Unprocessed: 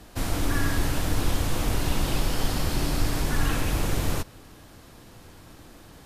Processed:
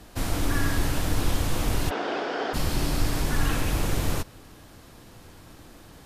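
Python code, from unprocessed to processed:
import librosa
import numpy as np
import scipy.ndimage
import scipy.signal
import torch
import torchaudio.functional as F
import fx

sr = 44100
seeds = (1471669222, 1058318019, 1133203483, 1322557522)

y = fx.cabinet(x, sr, low_hz=270.0, low_slope=24, high_hz=4500.0, hz=(430.0, 700.0, 1500.0, 2700.0, 4100.0), db=(8, 9, 8, -3, -7), at=(1.89, 2.53), fade=0.02)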